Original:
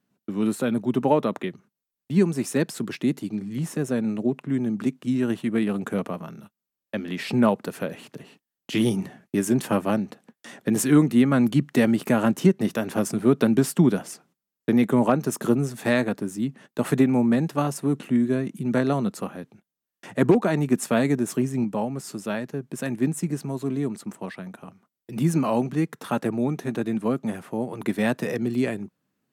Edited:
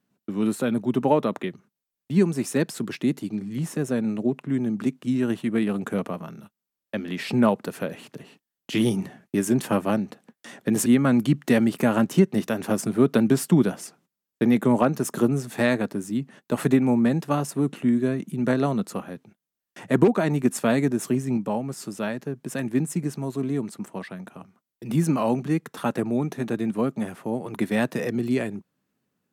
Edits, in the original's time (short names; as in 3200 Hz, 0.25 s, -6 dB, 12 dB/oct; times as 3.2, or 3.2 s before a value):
10.86–11.13 cut